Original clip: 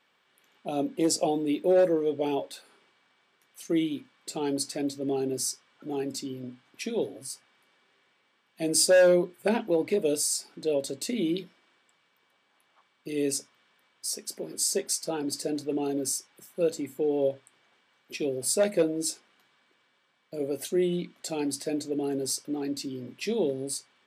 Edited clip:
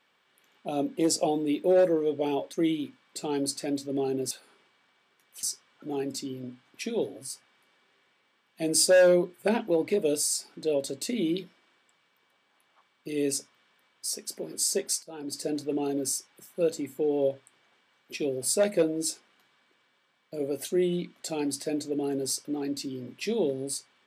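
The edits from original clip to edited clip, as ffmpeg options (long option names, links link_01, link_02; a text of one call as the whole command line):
ffmpeg -i in.wav -filter_complex "[0:a]asplit=5[link_01][link_02][link_03][link_04][link_05];[link_01]atrim=end=2.532[link_06];[link_02]atrim=start=3.648:end=5.432[link_07];[link_03]atrim=start=2.528:end=3.652[link_08];[link_04]atrim=start=5.428:end=15.03,asetpts=PTS-STARTPTS,afade=type=out:start_time=9.598:duration=0.004:curve=hsin:silence=0.0794328[link_09];[link_05]atrim=start=15.03,asetpts=PTS-STARTPTS,afade=type=in:duration=0.45:silence=0.0794328[link_10];[link_06][link_07]acrossfade=duration=0.004:curve1=hsin:curve2=hsin[link_11];[link_11][link_08]acrossfade=duration=0.004:curve1=hsin:curve2=hsin[link_12];[link_09][link_10]concat=n=2:v=0:a=1[link_13];[link_12][link_13]acrossfade=duration=0.004:curve1=hsin:curve2=hsin" out.wav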